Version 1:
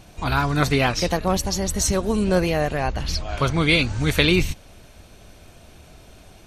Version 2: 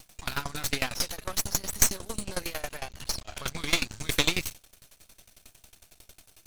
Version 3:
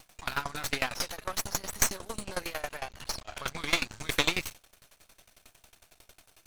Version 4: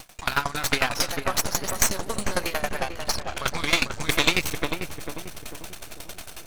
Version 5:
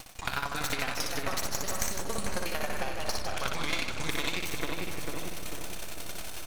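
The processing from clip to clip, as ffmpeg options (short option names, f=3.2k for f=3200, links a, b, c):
-af "crystalizer=i=6:c=0,aeval=exprs='max(val(0),0)':c=same,aeval=exprs='val(0)*pow(10,-21*if(lt(mod(11*n/s,1),2*abs(11)/1000),1-mod(11*n/s,1)/(2*abs(11)/1000),(mod(11*n/s,1)-2*abs(11)/1000)/(1-2*abs(11)/1000))/20)':c=same,volume=-5dB"
-af "equalizer=f=1.1k:w=0.4:g=7.5,volume=-5.5dB"
-filter_complex "[0:a]areverse,acompressor=mode=upward:threshold=-35dB:ratio=2.5,areverse,asplit=2[a][b];[b]adelay=445,lowpass=f=1.1k:p=1,volume=-5dB,asplit=2[c][d];[d]adelay=445,lowpass=f=1.1k:p=1,volume=0.48,asplit=2[e][f];[f]adelay=445,lowpass=f=1.1k:p=1,volume=0.48,asplit=2[g][h];[h]adelay=445,lowpass=f=1.1k:p=1,volume=0.48,asplit=2[i][j];[j]adelay=445,lowpass=f=1.1k:p=1,volume=0.48,asplit=2[k][l];[l]adelay=445,lowpass=f=1.1k:p=1,volume=0.48[m];[a][c][e][g][i][k][m]amix=inputs=7:normalize=0,alimiter=level_in=9dB:limit=-1dB:release=50:level=0:latency=1,volume=-1dB"
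-filter_complex "[0:a]acompressor=threshold=-26dB:ratio=6,asplit=2[a][b];[b]aecho=0:1:60|156|309.6|555.4|948.6:0.631|0.398|0.251|0.158|0.1[c];[a][c]amix=inputs=2:normalize=0,volume=-2.5dB"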